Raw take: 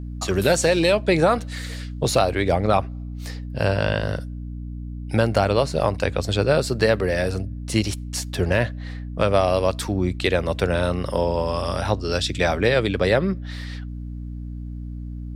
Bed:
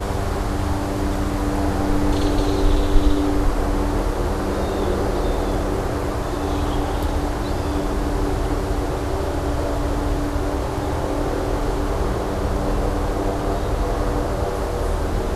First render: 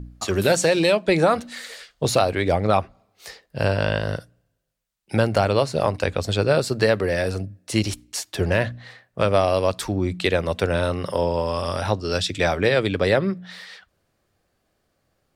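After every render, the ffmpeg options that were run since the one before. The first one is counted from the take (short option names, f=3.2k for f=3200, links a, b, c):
-af "bandreject=f=60:t=h:w=4,bandreject=f=120:t=h:w=4,bandreject=f=180:t=h:w=4,bandreject=f=240:t=h:w=4,bandreject=f=300:t=h:w=4"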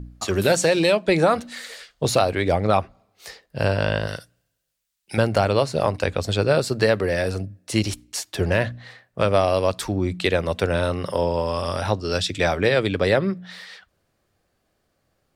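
-filter_complex "[0:a]asettb=1/sr,asplit=3[a][b][c];[a]atrim=end=4.074[d];[b]atrim=start=4.07:end=5.18,asetpts=PTS-STARTPTS,afade=t=in:d=0.004:c=qsin,afade=t=out:st=1.106:d=0.004:c=qsin,tiltshelf=f=1.4k:g=-6.5[e];[c]atrim=start=5.176[f];[d][e]acrossfade=d=0.004:c1=hsin:c2=qsin[g];[g][f]acrossfade=d=0.004:c1=qsin:c2=hsin"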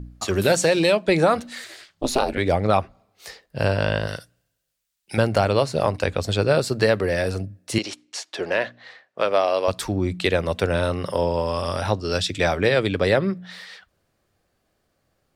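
-filter_complex "[0:a]asettb=1/sr,asplit=3[a][b][c];[a]atrim=end=1.644[d];[b]atrim=start=1.64:end=2.38,asetpts=PTS-STARTPTS,afade=t=in:d=0.004:c=qsin,afade=t=out:st=0.736:d=0.004:c=qsin,aeval=exprs='val(0)*sin(2*PI*130*n/s)':c=same[e];[c]atrim=start=2.376[f];[d][e]acrossfade=d=0.004:c1=hsin:c2=qsin[g];[g][f]acrossfade=d=0.004:c1=qsin:c2=hsin,asettb=1/sr,asplit=3[h][i][j];[h]atrim=end=7.784[k];[i]atrim=start=7.78:end=9.68,asetpts=PTS-STARTPTS,afade=t=in:d=0.004:c=qsin,afade=t=out:st=1.896:d=0.004:c=qsin,highpass=380,lowpass=5.9k[l];[j]atrim=start=9.676[m];[k][l]acrossfade=d=0.004:c1=hsin:c2=qsin[n];[n][m]acrossfade=d=0.004:c1=qsin:c2=hsin"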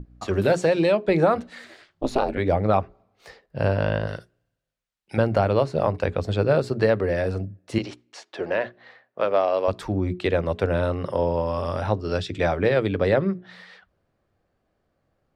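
-af "lowpass=f=1.3k:p=1,bandreject=f=60:t=h:w=6,bandreject=f=120:t=h:w=6,bandreject=f=180:t=h:w=6,bandreject=f=240:t=h:w=6,bandreject=f=300:t=h:w=6,bandreject=f=360:t=h:w=6,bandreject=f=420:t=h:w=6"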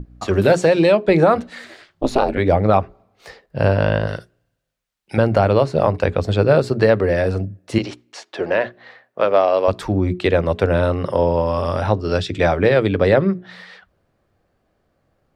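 -af "volume=6dB,alimiter=limit=-3dB:level=0:latency=1"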